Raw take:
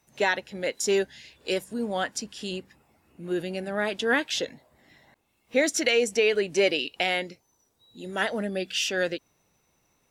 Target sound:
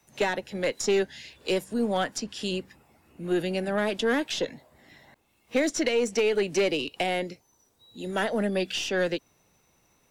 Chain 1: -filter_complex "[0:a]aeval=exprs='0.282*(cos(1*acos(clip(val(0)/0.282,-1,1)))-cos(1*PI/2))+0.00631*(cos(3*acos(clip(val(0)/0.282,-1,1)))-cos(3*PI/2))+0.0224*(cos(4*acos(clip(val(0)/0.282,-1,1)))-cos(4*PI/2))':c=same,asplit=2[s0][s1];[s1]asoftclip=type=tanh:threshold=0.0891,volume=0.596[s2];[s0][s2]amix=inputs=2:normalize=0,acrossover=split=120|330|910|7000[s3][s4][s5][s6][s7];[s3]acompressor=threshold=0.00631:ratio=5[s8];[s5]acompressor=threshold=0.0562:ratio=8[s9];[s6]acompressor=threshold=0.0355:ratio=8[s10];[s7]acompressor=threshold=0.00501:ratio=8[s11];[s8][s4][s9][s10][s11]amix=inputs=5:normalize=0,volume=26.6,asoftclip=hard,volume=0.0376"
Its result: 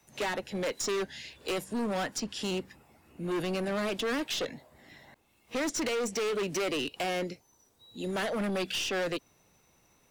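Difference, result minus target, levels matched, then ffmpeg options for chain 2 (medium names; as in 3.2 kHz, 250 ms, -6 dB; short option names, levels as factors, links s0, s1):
overload inside the chain: distortion +17 dB
-filter_complex "[0:a]aeval=exprs='0.282*(cos(1*acos(clip(val(0)/0.282,-1,1)))-cos(1*PI/2))+0.00631*(cos(3*acos(clip(val(0)/0.282,-1,1)))-cos(3*PI/2))+0.0224*(cos(4*acos(clip(val(0)/0.282,-1,1)))-cos(4*PI/2))':c=same,asplit=2[s0][s1];[s1]asoftclip=type=tanh:threshold=0.0891,volume=0.596[s2];[s0][s2]amix=inputs=2:normalize=0,acrossover=split=120|330|910|7000[s3][s4][s5][s6][s7];[s3]acompressor=threshold=0.00631:ratio=5[s8];[s5]acompressor=threshold=0.0562:ratio=8[s9];[s6]acompressor=threshold=0.0355:ratio=8[s10];[s7]acompressor=threshold=0.00501:ratio=8[s11];[s8][s4][s9][s10][s11]amix=inputs=5:normalize=0,volume=7.5,asoftclip=hard,volume=0.133"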